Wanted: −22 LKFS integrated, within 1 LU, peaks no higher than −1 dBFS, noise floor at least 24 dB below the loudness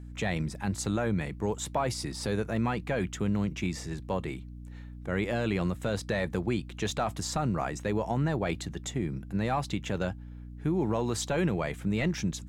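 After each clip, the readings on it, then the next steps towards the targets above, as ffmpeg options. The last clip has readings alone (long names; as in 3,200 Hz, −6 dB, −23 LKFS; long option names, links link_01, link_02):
mains hum 60 Hz; hum harmonics up to 300 Hz; level of the hum −41 dBFS; integrated loudness −31.5 LKFS; sample peak −17.5 dBFS; target loudness −22.0 LKFS
→ -af "bandreject=frequency=60:width_type=h:width=6,bandreject=frequency=120:width_type=h:width=6,bandreject=frequency=180:width_type=h:width=6,bandreject=frequency=240:width_type=h:width=6,bandreject=frequency=300:width_type=h:width=6"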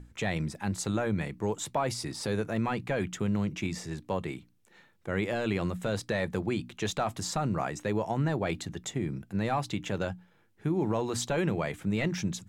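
mains hum none found; integrated loudness −32.0 LKFS; sample peak −16.5 dBFS; target loudness −22.0 LKFS
→ -af "volume=10dB"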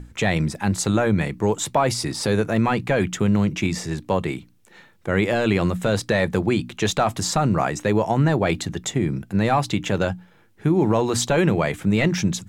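integrated loudness −22.0 LKFS; sample peak −6.5 dBFS; background noise floor −54 dBFS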